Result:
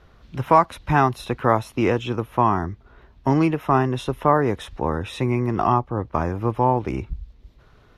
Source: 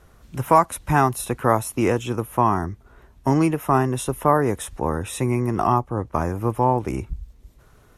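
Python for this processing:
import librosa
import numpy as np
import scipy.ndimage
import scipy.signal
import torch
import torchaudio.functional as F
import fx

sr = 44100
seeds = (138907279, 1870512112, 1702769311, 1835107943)

y = fx.high_shelf_res(x, sr, hz=6000.0, db=-13.5, q=1.5)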